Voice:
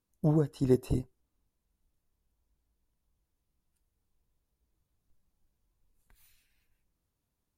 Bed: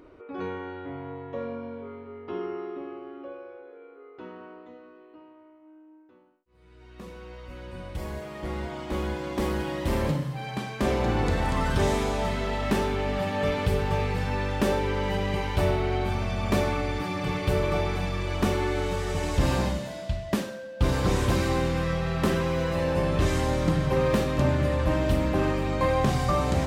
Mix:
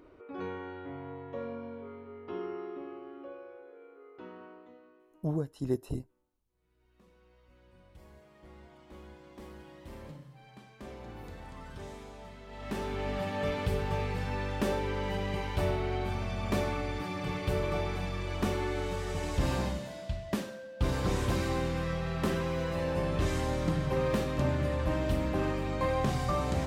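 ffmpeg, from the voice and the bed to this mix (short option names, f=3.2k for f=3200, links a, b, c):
-filter_complex "[0:a]adelay=5000,volume=-5.5dB[a];[1:a]volume=9.5dB,afade=t=out:st=4.42:d=0.98:silence=0.16788,afade=t=in:st=12.47:d=0.6:silence=0.188365[b];[a][b]amix=inputs=2:normalize=0"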